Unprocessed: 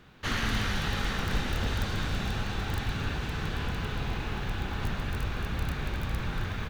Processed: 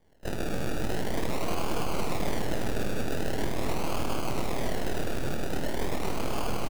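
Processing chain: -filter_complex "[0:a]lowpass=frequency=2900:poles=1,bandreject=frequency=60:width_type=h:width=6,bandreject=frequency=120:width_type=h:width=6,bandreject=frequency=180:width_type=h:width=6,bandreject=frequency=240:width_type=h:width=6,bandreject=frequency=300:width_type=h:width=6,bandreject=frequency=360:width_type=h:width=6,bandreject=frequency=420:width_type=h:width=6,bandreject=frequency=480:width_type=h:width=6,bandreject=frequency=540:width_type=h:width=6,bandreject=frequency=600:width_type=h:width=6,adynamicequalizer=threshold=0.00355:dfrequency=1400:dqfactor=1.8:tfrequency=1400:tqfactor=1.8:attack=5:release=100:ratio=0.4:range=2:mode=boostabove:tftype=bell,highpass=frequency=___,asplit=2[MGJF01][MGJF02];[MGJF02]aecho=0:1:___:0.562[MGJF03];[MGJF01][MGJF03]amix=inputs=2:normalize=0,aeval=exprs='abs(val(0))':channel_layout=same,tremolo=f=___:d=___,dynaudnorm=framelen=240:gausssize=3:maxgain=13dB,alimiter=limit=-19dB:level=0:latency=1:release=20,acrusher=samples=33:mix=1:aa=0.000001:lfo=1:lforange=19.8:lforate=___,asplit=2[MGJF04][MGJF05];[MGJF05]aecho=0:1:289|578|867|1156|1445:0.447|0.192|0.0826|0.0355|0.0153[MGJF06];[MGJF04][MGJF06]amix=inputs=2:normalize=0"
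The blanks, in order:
180, 971, 39, 0.621, 0.43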